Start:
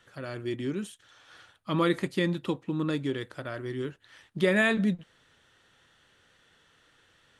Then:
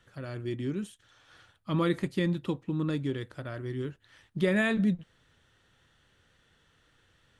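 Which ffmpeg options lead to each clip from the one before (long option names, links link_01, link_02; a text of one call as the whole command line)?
ffmpeg -i in.wav -af "lowshelf=frequency=170:gain=11.5,volume=-4.5dB" out.wav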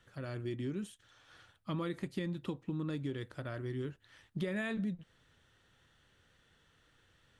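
ffmpeg -i in.wav -af "acompressor=threshold=-31dB:ratio=6,volume=-2.5dB" out.wav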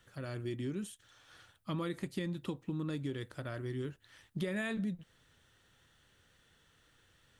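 ffmpeg -i in.wav -af "crystalizer=i=1:c=0" out.wav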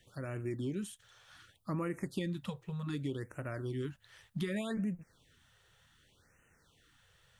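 ffmpeg -i in.wav -af "afftfilt=real='re*(1-between(b*sr/1024,240*pow(4300/240,0.5+0.5*sin(2*PI*0.66*pts/sr))/1.41,240*pow(4300/240,0.5+0.5*sin(2*PI*0.66*pts/sr))*1.41))':imag='im*(1-between(b*sr/1024,240*pow(4300/240,0.5+0.5*sin(2*PI*0.66*pts/sr))/1.41,240*pow(4300/240,0.5+0.5*sin(2*PI*0.66*pts/sr))*1.41))':win_size=1024:overlap=0.75,volume=1dB" out.wav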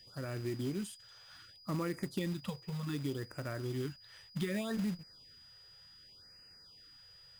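ffmpeg -i in.wav -af "acrusher=bits=4:mode=log:mix=0:aa=0.000001,aeval=exprs='val(0)+0.00158*sin(2*PI*4900*n/s)':channel_layout=same" out.wav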